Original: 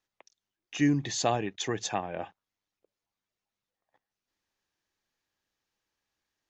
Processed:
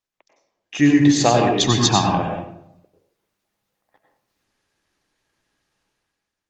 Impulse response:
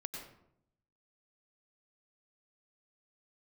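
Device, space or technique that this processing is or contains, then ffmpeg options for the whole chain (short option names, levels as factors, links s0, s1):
speakerphone in a meeting room: -filter_complex "[0:a]asettb=1/sr,asplit=3[s0][s1][s2];[s0]atrim=end=1.544[s3];[s1]atrim=start=1.54:end=2.19,asetpts=PTS-STARTPTS,afade=t=in:d=0.004:c=qsin,afade=t=out:st=0.646:d=0.004:c=qsin,equalizer=f=125:t=o:w=1:g=7,equalizer=f=250:t=o:w=1:g=6,equalizer=f=500:t=o:w=1:g=-12,equalizer=f=1000:t=o:w=1:g=9,equalizer=f=2000:t=o:w=1:g=-9,equalizer=f=4000:t=o:w=1:g=10[s4];[s2]atrim=start=2.186[s5];[s3][s4]acrossfade=d=0.004:c1=hsin:c2=qsin[s6];[s6][s5]acrossfade=d=0.004:c1=qsin:c2=hsin[s7];[1:a]atrim=start_sample=2205[s8];[s7][s8]afir=irnorm=-1:irlink=0,dynaudnorm=f=140:g=9:m=5.31,volume=1.19" -ar 48000 -c:a libopus -b:a 24k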